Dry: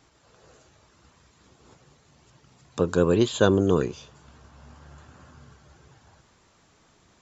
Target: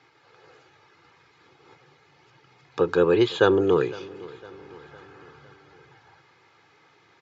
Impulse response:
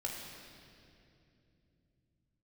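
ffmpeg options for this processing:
-af "highpass=f=120:w=0.5412,highpass=f=120:w=1.3066,equalizer=f=220:t=q:w=4:g=-7,equalizer=f=970:t=q:w=4:g=3,equalizer=f=1.5k:t=q:w=4:g=5,equalizer=f=2.2k:t=q:w=4:g=8,lowpass=f=4.9k:w=0.5412,lowpass=f=4.9k:w=1.3066,aecho=1:1:2.4:0.53,aecho=1:1:507|1014|1521|2028:0.0944|0.0481|0.0246|0.0125"

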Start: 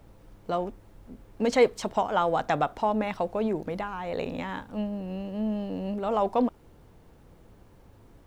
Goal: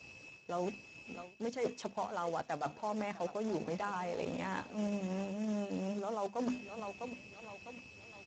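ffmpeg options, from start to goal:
-af "bandreject=f=50:t=h:w=6,bandreject=f=100:t=h:w=6,bandreject=f=150:t=h:w=6,bandreject=f=200:t=h:w=6,bandreject=f=250:t=h:w=6,bandreject=f=300:t=h:w=6,aeval=exprs='val(0)+0.00355*sin(2*PI*2600*n/s)':c=same,acrusher=bits=10:mix=0:aa=0.000001,aecho=1:1:653|1306|1959|2612:0.119|0.0594|0.0297|0.0149,aeval=exprs='sgn(val(0))*max(abs(val(0))-0.002,0)':c=same,areverse,acompressor=threshold=-35dB:ratio=16,areverse,acrusher=bits=3:mode=log:mix=0:aa=0.000001,volume=1dB" -ar 16000 -c:a libspeex -b:a 13k

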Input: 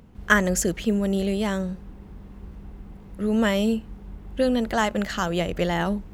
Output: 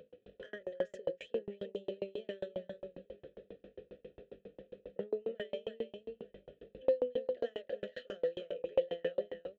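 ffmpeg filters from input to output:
-filter_complex "[0:a]lowpass=4.6k,bandreject=f=2.1k:w=11,crystalizer=i=8.5:c=0,superequalizer=7b=1.78:9b=0.251:11b=0.631:13b=2.51,acompressor=threshold=-28dB:ratio=12,flanger=delay=5.5:depth=2.8:regen=-66:speed=0.94:shape=triangular,asoftclip=type=tanh:threshold=-30.5dB,atempo=0.64,asplit=3[a][b][c];[a]bandpass=f=530:t=q:w=8,volume=0dB[d];[b]bandpass=f=1.84k:t=q:w=8,volume=-6dB[e];[c]bandpass=f=2.48k:t=q:w=8,volume=-9dB[f];[d][e][f]amix=inputs=3:normalize=0,tiltshelf=f=1.5k:g=8.5,aecho=1:1:324|891:0.473|0.106,aeval=exprs='val(0)*pow(10,-36*if(lt(mod(7.4*n/s,1),2*abs(7.4)/1000),1-mod(7.4*n/s,1)/(2*abs(7.4)/1000),(mod(7.4*n/s,1)-2*abs(7.4)/1000)/(1-2*abs(7.4)/1000))/20)':c=same,volume=12.5dB"

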